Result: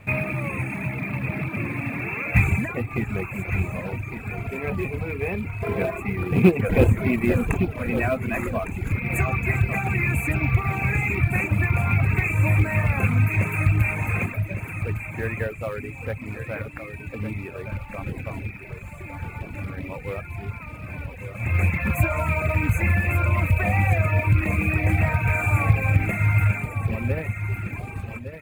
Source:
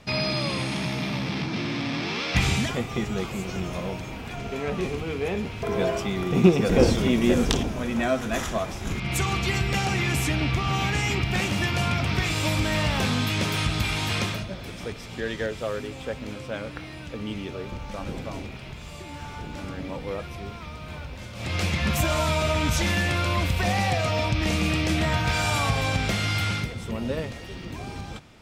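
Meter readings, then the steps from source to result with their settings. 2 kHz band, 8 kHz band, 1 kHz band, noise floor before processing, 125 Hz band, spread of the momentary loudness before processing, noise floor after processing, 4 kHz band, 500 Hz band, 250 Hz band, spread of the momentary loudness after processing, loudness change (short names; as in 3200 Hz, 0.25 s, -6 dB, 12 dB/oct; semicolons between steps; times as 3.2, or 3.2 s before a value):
+3.0 dB, -10.0 dB, -1.5 dB, -39 dBFS, +5.5 dB, 13 LU, -38 dBFS, under -15 dB, -1.0 dB, -0.5 dB, 13 LU, +2.0 dB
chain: FFT band-reject 2700–6200 Hz; in parallel at -5 dB: companded quantiser 4-bit; on the sum: fifteen-band EQ 100 Hz +12 dB, 2500 Hz +9 dB, 6300 Hz -9 dB; on a send: feedback echo 1.158 s, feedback 23%, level -9 dB; on the sum: dynamic EQ 5600 Hz, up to -5 dB, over -37 dBFS, Q 0.81; reverb removal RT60 1 s; gain -4 dB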